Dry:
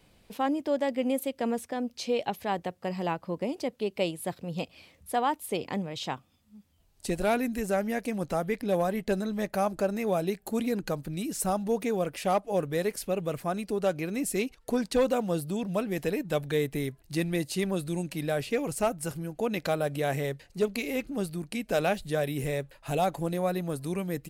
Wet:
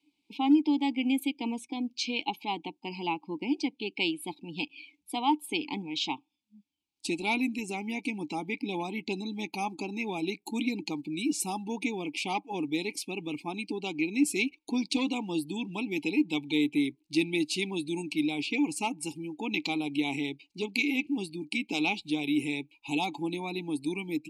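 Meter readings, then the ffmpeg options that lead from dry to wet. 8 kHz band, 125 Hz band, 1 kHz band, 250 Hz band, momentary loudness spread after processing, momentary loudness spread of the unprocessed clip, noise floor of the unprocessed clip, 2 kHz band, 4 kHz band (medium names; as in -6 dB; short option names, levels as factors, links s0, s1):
-1.0 dB, -8.5 dB, -2.5 dB, +2.5 dB, 8 LU, 6 LU, -63 dBFS, +3.5 dB, +6.0 dB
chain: -filter_complex "[0:a]aexciter=amount=13.8:drive=2.6:freq=2700,asplit=3[s0][s1][s2];[s0]bandpass=f=300:t=q:w=8,volume=1[s3];[s1]bandpass=f=870:t=q:w=8,volume=0.501[s4];[s2]bandpass=f=2240:t=q:w=8,volume=0.355[s5];[s3][s4][s5]amix=inputs=3:normalize=0,asplit=2[s6][s7];[s7]acrusher=bits=4:mode=log:mix=0:aa=0.000001,volume=0.299[s8];[s6][s8]amix=inputs=2:normalize=0,afftdn=nr=18:nf=-54,volume=2.37"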